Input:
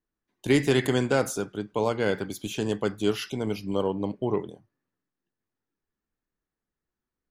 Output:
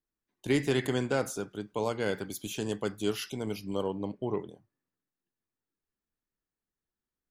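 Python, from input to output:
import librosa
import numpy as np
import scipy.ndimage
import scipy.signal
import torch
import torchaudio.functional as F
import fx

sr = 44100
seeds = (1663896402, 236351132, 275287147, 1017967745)

y = fx.high_shelf(x, sr, hz=6400.0, db=9.0, at=(1.51, 3.98))
y = F.gain(torch.from_numpy(y), -5.5).numpy()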